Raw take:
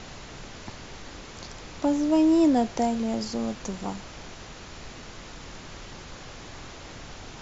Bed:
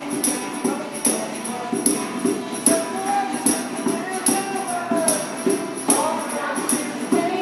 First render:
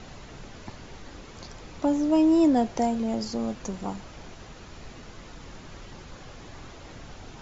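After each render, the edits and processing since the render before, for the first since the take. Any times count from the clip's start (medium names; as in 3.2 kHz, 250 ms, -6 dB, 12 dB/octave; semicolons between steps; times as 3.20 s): noise reduction 6 dB, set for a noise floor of -43 dBFS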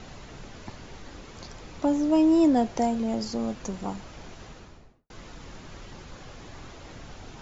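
4.45–5.10 s: studio fade out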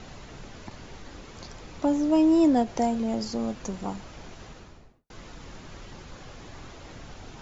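endings held to a fixed fall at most 300 dB/s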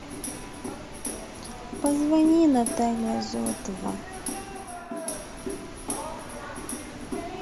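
add bed -14 dB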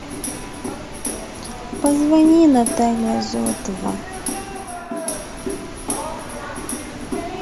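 trim +7.5 dB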